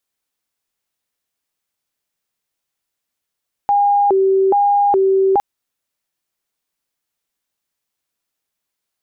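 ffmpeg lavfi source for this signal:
-f lavfi -i "aevalsrc='0.299*sin(2*PI*(598.5*t+213.5/1.2*(0.5-abs(mod(1.2*t,1)-0.5))))':d=1.71:s=44100"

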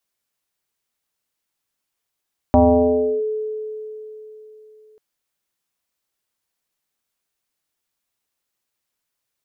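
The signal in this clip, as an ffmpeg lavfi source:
-f lavfi -i "aevalsrc='0.398*pow(10,-3*t/3.64)*sin(2*PI*431*t+2.2*clip(1-t/0.69,0,1)*sin(2*PI*0.41*431*t))':d=2.44:s=44100"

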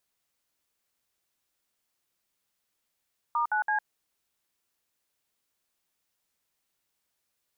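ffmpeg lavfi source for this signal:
-f lavfi -i "aevalsrc='0.0473*clip(min(mod(t,0.166),0.106-mod(t,0.166))/0.002,0,1)*(eq(floor(t/0.166),0)*(sin(2*PI*941*mod(t,0.166))+sin(2*PI*1209*mod(t,0.166)))+eq(floor(t/0.166),1)*(sin(2*PI*852*mod(t,0.166))+sin(2*PI*1477*mod(t,0.166)))+eq(floor(t/0.166),2)*(sin(2*PI*852*mod(t,0.166))+sin(2*PI*1633*mod(t,0.166))))':d=0.498:s=44100"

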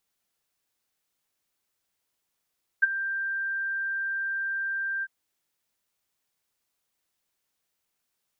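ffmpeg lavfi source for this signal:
-f lavfi -i "aevalsrc='0.224*sin(2*PI*1580*t)':d=2.251:s=44100,afade=t=in:d=0.015,afade=t=out:st=0.015:d=0.021:silence=0.2,afade=t=out:st=2.21:d=0.041"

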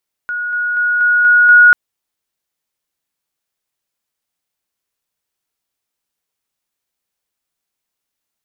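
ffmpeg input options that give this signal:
-f lavfi -i "aevalsrc='pow(10,(-18+3*floor(t/0.24))/20)*sin(2*PI*1450*t)':d=1.44:s=44100"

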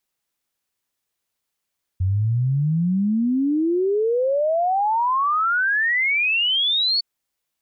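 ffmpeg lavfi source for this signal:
-f lavfi -i "aevalsrc='0.141*clip(min(t,5.01-t)/0.01,0,1)*sin(2*PI*90*5.01/log(4500/90)*(exp(log(4500/90)*t/5.01)-1))':d=5.01:s=44100"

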